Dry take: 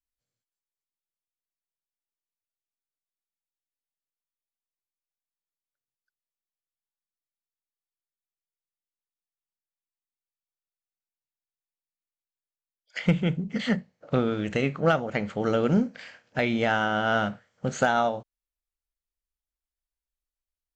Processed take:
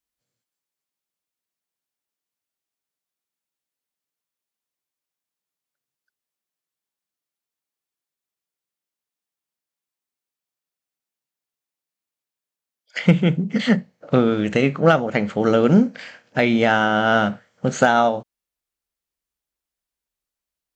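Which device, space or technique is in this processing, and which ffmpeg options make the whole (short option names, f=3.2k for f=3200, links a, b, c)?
filter by subtraction: -filter_complex "[0:a]asplit=2[a][b];[b]lowpass=200,volume=-1[c];[a][c]amix=inputs=2:normalize=0,volume=6.5dB"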